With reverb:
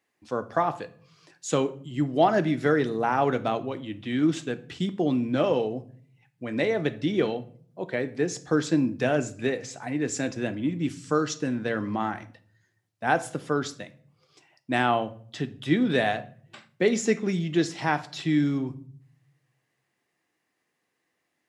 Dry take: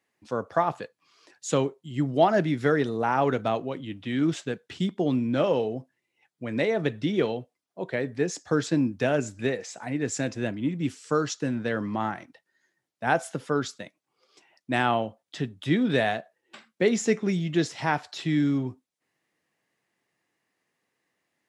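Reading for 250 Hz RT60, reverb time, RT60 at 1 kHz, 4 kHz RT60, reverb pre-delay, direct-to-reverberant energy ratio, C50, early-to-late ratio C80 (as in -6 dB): 0.95 s, 0.50 s, 0.45 s, 0.40 s, 3 ms, 11.0 dB, 17.5 dB, 21.5 dB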